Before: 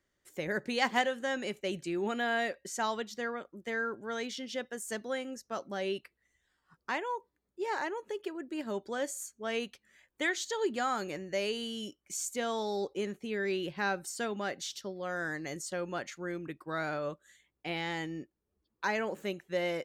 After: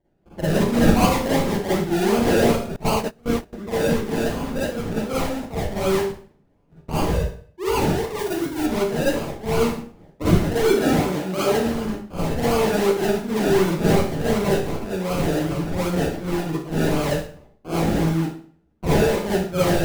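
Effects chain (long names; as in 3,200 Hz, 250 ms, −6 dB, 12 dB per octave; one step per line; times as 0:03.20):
sample-and-hold swept by an LFO 33×, swing 60% 2.7 Hz
low-shelf EQ 410 Hz +8.5 dB
four-comb reverb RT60 0.51 s, DRR −9.5 dB
0:02.76–0:03.53: noise gate −20 dBFS, range −24 dB
0:08.19–0:08.66: high-shelf EQ 8,300 Hz +7.5 dB
0:10.76–0:11.66: high-pass filter 120 Hz 6 dB per octave
one half of a high-frequency compander decoder only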